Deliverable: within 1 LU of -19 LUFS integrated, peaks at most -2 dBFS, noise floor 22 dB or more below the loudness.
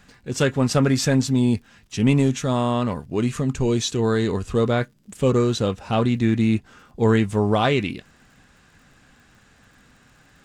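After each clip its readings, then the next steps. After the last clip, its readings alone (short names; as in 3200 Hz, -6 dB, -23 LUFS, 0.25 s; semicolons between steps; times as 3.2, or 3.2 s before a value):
ticks 46/s; loudness -21.5 LUFS; peak -6.0 dBFS; loudness target -19.0 LUFS
-> de-click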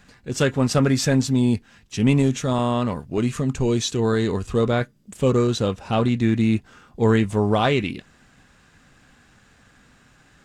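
ticks 0.29/s; loudness -21.5 LUFS; peak -6.0 dBFS; loudness target -19.0 LUFS
-> gain +2.5 dB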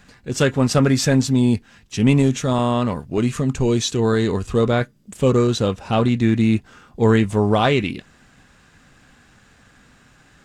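loudness -19.0 LUFS; peak -3.5 dBFS; noise floor -53 dBFS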